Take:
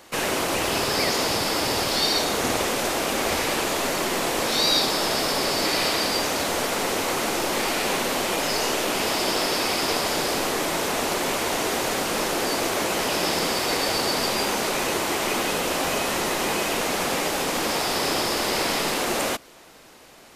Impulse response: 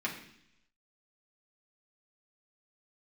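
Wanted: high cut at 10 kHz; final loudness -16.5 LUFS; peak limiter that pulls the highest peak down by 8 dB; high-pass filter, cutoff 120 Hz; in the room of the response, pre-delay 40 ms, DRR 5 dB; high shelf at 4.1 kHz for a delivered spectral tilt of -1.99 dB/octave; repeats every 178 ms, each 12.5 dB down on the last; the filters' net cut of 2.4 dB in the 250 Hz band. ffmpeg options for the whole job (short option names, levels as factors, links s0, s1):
-filter_complex "[0:a]highpass=120,lowpass=10000,equalizer=f=250:t=o:g=-3,highshelf=f=4100:g=8.5,alimiter=limit=0.251:level=0:latency=1,aecho=1:1:178|356|534:0.237|0.0569|0.0137,asplit=2[s0][s1];[1:a]atrim=start_sample=2205,adelay=40[s2];[s1][s2]afir=irnorm=-1:irlink=0,volume=0.299[s3];[s0][s3]amix=inputs=2:normalize=0,volume=1.5"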